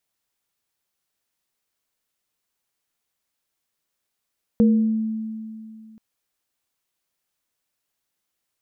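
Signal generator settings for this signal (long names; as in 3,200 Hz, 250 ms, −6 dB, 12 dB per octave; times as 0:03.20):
inharmonic partials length 1.38 s, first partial 220 Hz, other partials 471 Hz, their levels −7.5 dB, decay 2.53 s, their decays 0.57 s, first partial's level −11.5 dB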